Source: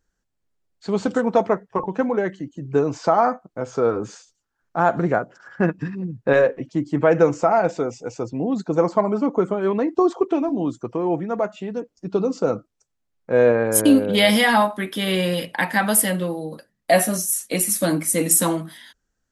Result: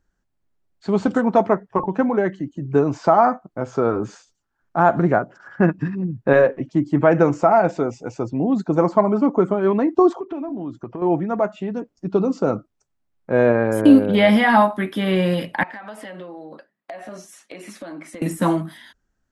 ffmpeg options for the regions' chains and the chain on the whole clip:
-filter_complex "[0:a]asettb=1/sr,asplit=3[s0][s1][s2];[s0]atrim=end=10.204[s3];[s1]atrim=start=10.2:end=11.02,asetpts=PTS-STARTPTS,afade=t=in:d=0.004:c=qsin,afade=t=out:st=0.816:d=0.004:c=qsin,lowpass=4000,acompressor=threshold=0.0316:ratio=4:attack=3.2:release=140:knee=1:detection=peak[s4];[s2]atrim=start=11.016[s5];[s3][s4]acrossfade=d=0.004:c1=hsin:c2=qsin[s6];[s6][s5]acrossfade=d=0.004:c1=qsin:c2=hsin,asettb=1/sr,asplit=3[s7][s8][s9];[s7]atrim=end=15.634[s10];[s8]atrim=start=15.63:end=18.22,asetpts=PTS-STARTPTS,afade=t=in:d=0.004:c=qsin,afade=t=out:st=2.586:d=0.004:c=qsin,highpass=360,lowpass=3600,acompressor=threshold=0.0224:ratio=16:attack=3.2:release=140:knee=1:detection=peak,asoftclip=type=hard:threshold=0.0473[s11];[s9]atrim=start=18.216[s12];[s10][s11]acrossfade=d=0.004:c1=hsin:c2=qsin[s13];[s13][s12]acrossfade=d=0.004:c1=qsin:c2=hsin,highshelf=f=2800:g=-10,acrossover=split=2800[s14][s15];[s15]acompressor=threshold=0.00891:ratio=4:attack=1:release=60[s16];[s14][s16]amix=inputs=2:normalize=0,equalizer=f=480:t=o:w=0.21:g=-7.5,volume=1.58"

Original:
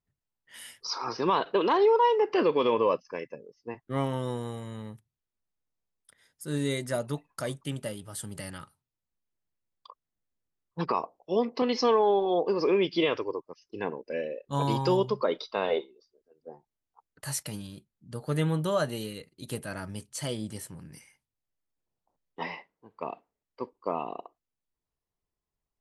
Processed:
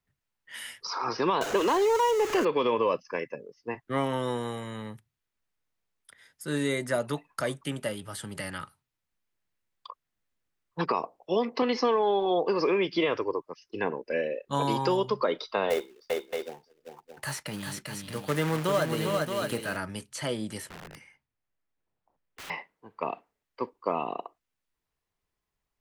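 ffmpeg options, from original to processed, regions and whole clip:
-filter_complex "[0:a]asettb=1/sr,asplit=3[s0][s1][s2];[s0]atrim=end=1.414[s3];[s1]atrim=start=1.41:end=2.45,asetpts=PTS-STARTPTS,afade=t=in:d=0.004:c=qsin,afade=t=out:st=1.036:d=0.004:c=qsin,aeval=exprs='val(0)+0.5*0.0299*sgn(val(0))':c=same,equalizer=f=6600:w=3:g=9[s4];[s2]atrim=start=2.446[s5];[s3][s4]acrossfade=d=0.004:c1=hsin:c2=qsin[s6];[s6][s5]acrossfade=d=0.004:c1=qsin:c2=hsin,asettb=1/sr,asplit=3[s7][s8][s9];[s7]atrim=end=15.704[s10];[s8]atrim=start=15.7:end=19.77,asetpts=PTS-STARTPTS,afade=t=in:d=0.004:c=qsin,afade=t=out:st=4.066:d=0.004:c=qsin,acrusher=bits=3:mode=log:mix=0:aa=0.000001,aecho=1:1:396|623:0.531|0.355,atrim=end_sample=179487[s11];[s9]atrim=start=19.766[s12];[s10][s11]acrossfade=d=0.004:c1=hsin:c2=qsin[s13];[s13][s12]acrossfade=d=0.004:c1=qsin:c2=hsin,asettb=1/sr,asplit=3[s14][s15][s16];[s14]atrim=end=20.694[s17];[s15]atrim=start=20.69:end=22.5,asetpts=PTS-STARTPTS,afade=t=in:d=0.004:c=qsin,afade=t=out:st=1.806:d=0.004:c=qsin,lowpass=f=1800:p=1,acrossover=split=210|1100[s18][s19][s20];[s18]acompressor=threshold=0.00316:ratio=4[s21];[s19]acompressor=threshold=0.00355:ratio=4[s22];[s20]acompressor=threshold=0.00398:ratio=4[s23];[s21][s22][s23]amix=inputs=3:normalize=0,aeval=exprs='(mod(158*val(0)+1,2)-1)/158':c=same[s24];[s16]atrim=start=22.496[s25];[s17][s24]acrossfade=d=0.004:c1=hsin:c2=qsin[s26];[s26][s25]acrossfade=d=0.004:c1=qsin:c2=hsin,equalizer=f=1900:t=o:w=2:g=6.5,acrossover=split=170|740|1900|5400[s27][s28][s29][s30][s31];[s27]acompressor=threshold=0.00447:ratio=4[s32];[s28]acompressor=threshold=0.0447:ratio=4[s33];[s29]acompressor=threshold=0.0178:ratio=4[s34];[s30]acompressor=threshold=0.00631:ratio=4[s35];[s31]acompressor=threshold=0.00562:ratio=4[s36];[s32][s33][s34][s35][s36]amix=inputs=5:normalize=0,volume=1.33"

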